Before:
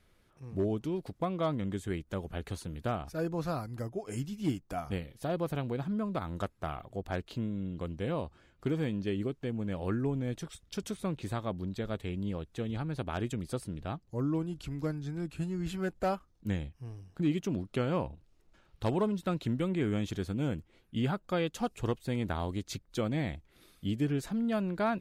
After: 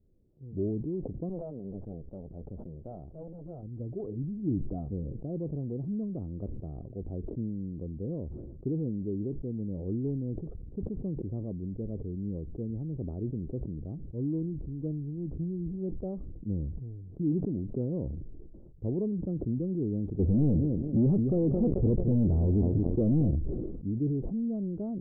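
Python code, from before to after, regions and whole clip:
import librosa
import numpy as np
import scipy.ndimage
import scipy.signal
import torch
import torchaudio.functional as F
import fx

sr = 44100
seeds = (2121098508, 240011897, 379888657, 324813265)

y = fx.chain(x, sr, fx.lower_of_two(delay_ms=1.4),
    fx.leveller(passes=1),
    fx.low_shelf(hz=230.0, db=-9.5), at=(1.29, 3.63))
y = fx.chain(y, sr, fx.echo_feedback(ms=220, feedback_pct=34, wet_db=-16),
    fx.leveller(passes=5), at=(20.19, 23.31))
y = scipy.signal.sosfilt(scipy.signal.cheby2(4, 70, 2000.0, 'lowpass', fs=sr, output='sos'), y)
y = fx.sustainer(y, sr, db_per_s=28.0)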